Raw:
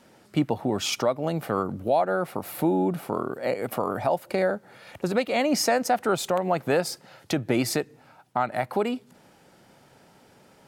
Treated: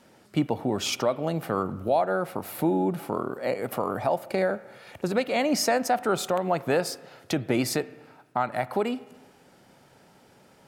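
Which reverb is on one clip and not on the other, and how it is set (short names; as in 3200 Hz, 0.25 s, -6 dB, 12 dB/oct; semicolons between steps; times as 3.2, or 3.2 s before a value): spring tank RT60 1.3 s, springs 31/42 ms, chirp 75 ms, DRR 16.5 dB; gain -1 dB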